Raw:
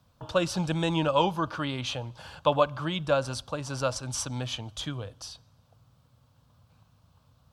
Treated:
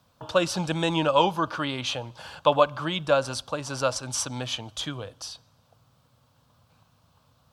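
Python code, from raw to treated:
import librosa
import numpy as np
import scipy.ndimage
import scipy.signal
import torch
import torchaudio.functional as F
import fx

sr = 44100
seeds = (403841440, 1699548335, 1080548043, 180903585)

y = fx.low_shelf(x, sr, hz=150.0, db=-10.5)
y = F.gain(torch.from_numpy(y), 4.0).numpy()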